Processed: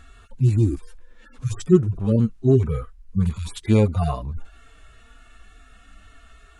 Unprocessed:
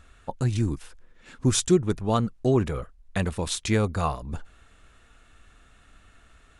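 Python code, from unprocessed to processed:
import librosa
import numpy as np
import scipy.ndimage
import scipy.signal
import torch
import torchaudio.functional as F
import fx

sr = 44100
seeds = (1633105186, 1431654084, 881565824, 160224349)

y = fx.hpss_only(x, sr, part='harmonic')
y = fx.peak_eq(y, sr, hz=600.0, db=-13.5, octaves=0.45, at=(2.16, 3.64))
y = y * 10.0 ** (7.5 / 20.0)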